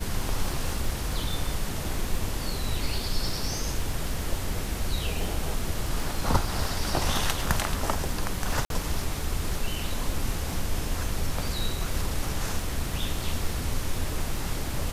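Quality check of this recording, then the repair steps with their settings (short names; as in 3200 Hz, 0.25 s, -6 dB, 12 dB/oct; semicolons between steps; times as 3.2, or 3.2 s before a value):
crackle 24/s -32 dBFS
8.65–8.7 gap 52 ms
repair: de-click; interpolate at 8.65, 52 ms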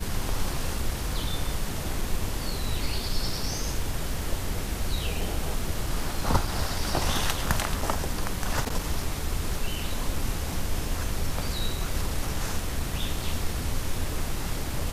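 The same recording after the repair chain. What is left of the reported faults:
none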